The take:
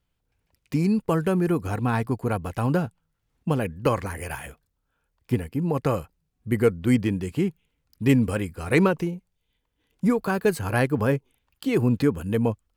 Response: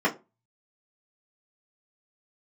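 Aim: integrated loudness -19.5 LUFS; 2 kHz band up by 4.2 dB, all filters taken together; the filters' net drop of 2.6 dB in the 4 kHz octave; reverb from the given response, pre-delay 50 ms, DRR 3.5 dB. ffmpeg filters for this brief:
-filter_complex "[0:a]equalizer=f=2000:t=o:g=7,equalizer=f=4000:t=o:g=-7.5,asplit=2[s0][s1];[1:a]atrim=start_sample=2205,adelay=50[s2];[s1][s2]afir=irnorm=-1:irlink=0,volume=0.133[s3];[s0][s3]amix=inputs=2:normalize=0,volume=1.33"

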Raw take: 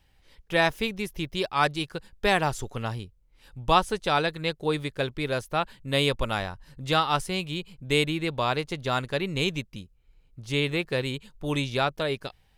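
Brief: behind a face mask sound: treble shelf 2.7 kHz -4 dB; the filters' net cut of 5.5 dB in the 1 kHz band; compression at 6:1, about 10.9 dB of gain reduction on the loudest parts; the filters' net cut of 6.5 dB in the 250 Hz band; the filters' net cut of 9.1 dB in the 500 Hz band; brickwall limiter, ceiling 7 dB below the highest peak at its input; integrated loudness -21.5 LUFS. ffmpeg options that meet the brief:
-af "equalizer=f=250:t=o:g=-7,equalizer=f=500:t=o:g=-8.5,equalizer=f=1000:t=o:g=-3.5,acompressor=threshold=0.0251:ratio=6,alimiter=level_in=1.06:limit=0.0631:level=0:latency=1,volume=0.944,highshelf=f=2700:g=-4,volume=8.41"

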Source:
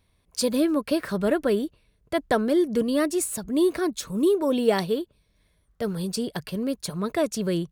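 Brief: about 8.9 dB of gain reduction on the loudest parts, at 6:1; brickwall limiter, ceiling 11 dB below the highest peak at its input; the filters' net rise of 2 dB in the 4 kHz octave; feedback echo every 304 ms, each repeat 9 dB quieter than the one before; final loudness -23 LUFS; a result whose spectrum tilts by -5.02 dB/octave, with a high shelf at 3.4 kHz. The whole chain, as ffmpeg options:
-af "highshelf=f=3400:g=-6.5,equalizer=f=4000:t=o:g=7,acompressor=threshold=0.0562:ratio=6,alimiter=level_in=1.26:limit=0.0631:level=0:latency=1,volume=0.794,aecho=1:1:304|608|912|1216:0.355|0.124|0.0435|0.0152,volume=3.55"

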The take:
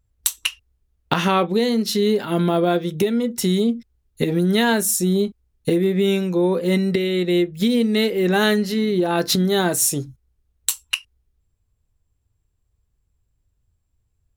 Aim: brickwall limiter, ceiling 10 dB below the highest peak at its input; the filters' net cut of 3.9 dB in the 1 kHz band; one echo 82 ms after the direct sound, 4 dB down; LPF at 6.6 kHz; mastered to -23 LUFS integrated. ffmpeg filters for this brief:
-af "lowpass=6600,equalizer=f=1000:t=o:g=-5.5,alimiter=limit=0.158:level=0:latency=1,aecho=1:1:82:0.631"

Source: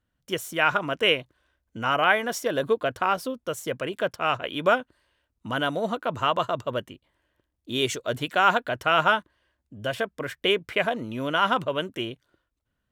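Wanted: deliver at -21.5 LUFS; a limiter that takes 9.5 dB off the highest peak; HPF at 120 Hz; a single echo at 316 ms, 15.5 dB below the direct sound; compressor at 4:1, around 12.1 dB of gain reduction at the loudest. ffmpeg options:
-af "highpass=120,acompressor=threshold=0.0316:ratio=4,alimiter=level_in=1.06:limit=0.0631:level=0:latency=1,volume=0.944,aecho=1:1:316:0.168,volume=5.96"

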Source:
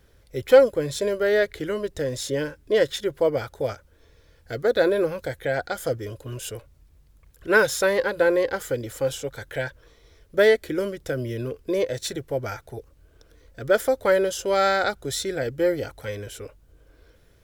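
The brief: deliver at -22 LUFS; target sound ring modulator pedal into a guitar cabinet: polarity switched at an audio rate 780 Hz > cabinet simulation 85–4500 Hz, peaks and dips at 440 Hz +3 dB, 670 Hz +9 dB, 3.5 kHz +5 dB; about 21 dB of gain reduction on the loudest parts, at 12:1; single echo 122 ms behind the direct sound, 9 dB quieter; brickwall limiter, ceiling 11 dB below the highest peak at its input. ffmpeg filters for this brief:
-af "acompressor=threshold=0.0316:ratio=12,alimiter=level_in=1.68:limit=0.0631:level=0:latency=1,volume=0.596,aecho=1:1:122:0.355,aeval=exprs='val(0)*sgn(sin(2*PI*780*n/s))':c=same,highpass=85,equalizer=f=440:t=q:w=4:g=3,equalizer=f=670:t=q:w=4:g=9,equalizer=f=3500:t=q:w=4:g=5,lowpass=f=4500:w=0.5412,lowpass=f=4500:w=1.3066,volume=4.73"

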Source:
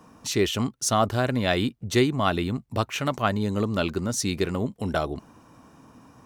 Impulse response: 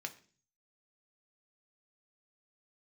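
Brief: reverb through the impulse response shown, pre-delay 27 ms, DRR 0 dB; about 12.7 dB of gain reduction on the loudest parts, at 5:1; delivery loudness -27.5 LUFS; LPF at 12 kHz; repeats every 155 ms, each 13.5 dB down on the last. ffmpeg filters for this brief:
-filter_complex "[0:a]lowpass=12000,acompressor=threshold=0.0282:ratio=5,aecho=1:1:155|310:0.211|0.0444,asplit=2[s0][s1];[1:a]atrim=start_sample=2205,adelay=27[s2];[s1][s2]afir=irnorm=-1:irlink=0,volume=1.12[s3];[s0][s3]amix=inputs=2:normalize=0,volume=1.68"

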